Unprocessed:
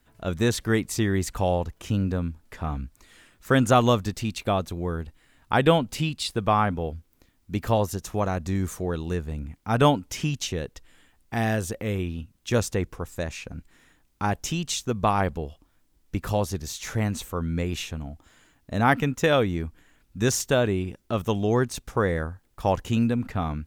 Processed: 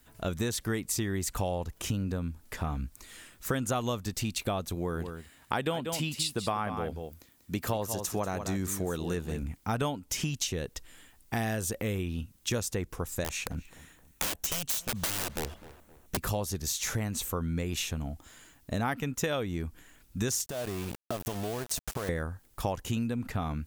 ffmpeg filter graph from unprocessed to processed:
-filter_complex "[0:a]asettb=1/sr,asplit=3[s0][s1][s2];[s0]atrim=end=4.754[s3];[s1]atrim=start=4.75:end=9.43,asetpts=PTS-STARTPTS,afade=t=in:d=0.004:c=qsin,afade=t=out:st=4.676:d=0.004:c=qsin,highpass=f=130:p=1,aecho=1:1:189:0.282,atrim=end_sample=206388[s4];[s2]atrim=start=9.426[s5];[s3][s4]acrossfade=d=0.004:c1=hsin:c2=qsin[s6];[s6][s5]acrossfade=d=0.004:c1=qsin:c2=hsin,asettb=1/sr,asplit=3[s7][s8][s9];[s7]atrim=end=13.244[s10];[s8]atrim=start=13.24:end=16.17,asetpts=PTS-STARTPTS,afade=t=in:d=0.004:c=qsin,afade=t=out:st=2.926:d=0.004:c=qsin,bandreject=f=4900:w=8.3,aeval=exprs='(mod(15*val(0)+1,2)-1)/15':c=same,asplit=2[s11][s12];[s12]adelay=260,lowpass=f=2200:p=1,volume=0.1,asplit=2[s13][s14];[s14]adelay=260,lowpass=f=2200:p=1,volume=0.41,asplit=2[s15][s16];[s16]adelay=260,lowpass=f=2200:p=1,volume=0.41[s17];[s11][s13][s15][s17]amix=inputs=4:normalize=0,atrim=end_sample=129213[s18];[s9]atrim=start=16.166[s19];[s10][s18]acrossfade=d=0.004:c1=hsin:c2=qsin[s20];[s20][s19]acrossfade=d=0.004:c1=qsin:c2=hsin,asettb=1/sr,asplit=3[s21][s22][s23];[s21]atrim=end=20.464[s24];[s22]atrim=start=20.46:end=22.09,asetpts=PTS-STARTPTS,afade=t=in:d=0.004:c=qsin,afade=t=out:st=1.626:d=0.004:c=qsin,equalizer=f=670:w=3.3:g=10,acompressor=threshold=0.0316:ratio=20:attack=3.2:release=140:knee=1:detection=peak,aeval=exprs='val(0)*gte(abs(val(0)),0.0119)':c=same[s25];[s23]atrim=start=22.086[s26];[s24][s25]acrossfade=d=0.004:c1=hsin:c2=qsin[s27];[s27][s26]acrossfade=d=0.004:c1=qsin:c2=hsin,highshelf=f=5700:g=10,acompressor=threshold=0.0316:ratio=5,volume=1.19"

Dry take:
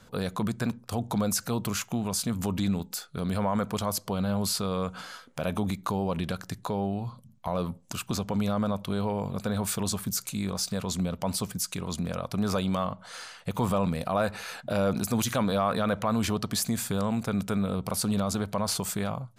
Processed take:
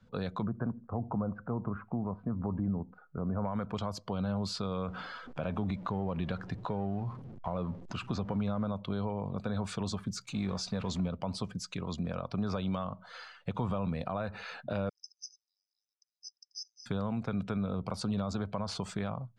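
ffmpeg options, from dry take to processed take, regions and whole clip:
-filter_complex "[0:a]asettb=1/sr,asplit=3[s0][s1][s2];[s0]atrim=end=0.444[s3];[s1]atrim=start=0.44:end=3.45,asetpts=PTS-STARTPTS,afade=t=in:d=0.004:c=qsin,afade=t=out:st=3.006:d=0.004:c=qsin,lowpass=f=1400:w=0.5412,lowpass=f=1400:w=1.3066,aecho=1:1:79|158|237:0.0668|0.0267|0.0107,atrim=end_sample=132741[s4];[s2]atrim=start=3.446[s5];[s3][s4]acrossfade=d=0.004:c1=hsin:c2=qsin[s6];[s6][s5]acrossfade=d=0.004:c1=qsin:c2=hsin,asettb=1/sr,asplit=3[s7][s8][s9];[s7]atrim=end=4.884[s10];[s8]atrim=start=4.88:end=8.68,asetpts=PTS-STARTPTS,afade=t=in:d=0.004:c=qsin,afade=t=out:st=3.796:d=0.004:c=qsin,aeval=exprs='val(0)+0.5*0.0119*sgn(val(0))':c=same,highshelf=f=3800:g=-5[s11];[s9]atrim=start=8.676[s12];[s10][s11]acrossfade=d=0.004:c1=hsin:c2=qsin[s13];[s13][s12]acrossfade=d=0.004:c1=qsin:c2=hsin,asettb=1/sr,asplit=3[s14][s15][s16];[s14]atrim=end=10.264[s17];[s15]atrim=start=10.26:end=11.08,asetpts=PTS-STARTPTS,afade=t=in:d=0.004:c=qsin,afade=t=out:st=0.816:d=0.004:c=qsin,aeval=exprs='val(0)+0.5*0.015*sgn(val(0))':c=same,agate=range=0.0224:threshold=0.02:ratio=3:release=100:detection=peak[s18];[s16]atrim=start=11.076[s19];[s17][s18]acrossfade=d=0.004:c1=hsin:c2=qsin[s20];[s20][s19]acrossfade=d=0.004:c1=qsin:c2=hsin,asettb=1/sr,asplit=3[s21][s22][s23];[s21]atrim=end=14.894[s24];[s22]atrim=start=14.89:end=16.86,asetpts=PTS-STARTPTS,afade=t=in:d=0.004:c=qsin,afade=t=out:st=1.966:d=0.004:c=qsin,asuperpass=centerf=5500:order=8:qfactor=4.8,aecho=1:1:0.8:0.95,atrim=end_sample=86877[s25];[s23]atrim=start=16.856[s26];[s24][s25]acrossfade=d=0.004:c1=hsin:c2=qsin[s27];[s27][s26]acrossfade=d=0.004:c1=qsin:c2=hsin,lowpass=4600,afftdn=nr=12:nf=-47,acrossover=split=150[s28][s29];[s29]acompressor=threshold=0.0355:ratio=6[s30];[s28][s30]amix=inputs=2:normalize=0,volume=0.708"

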